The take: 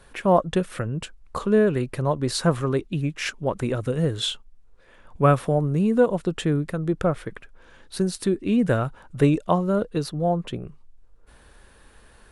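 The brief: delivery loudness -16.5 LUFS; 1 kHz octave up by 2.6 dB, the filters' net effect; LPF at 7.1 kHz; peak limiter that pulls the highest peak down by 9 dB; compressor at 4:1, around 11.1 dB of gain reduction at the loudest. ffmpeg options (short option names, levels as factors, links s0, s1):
-af "lowpass=7100,equalizer=f=1000:t=o:g=3.5,acompressor=threshold=0.0562:ratio=4,volume=5.96,alimiter=limit=0.501:level=0:latency=1"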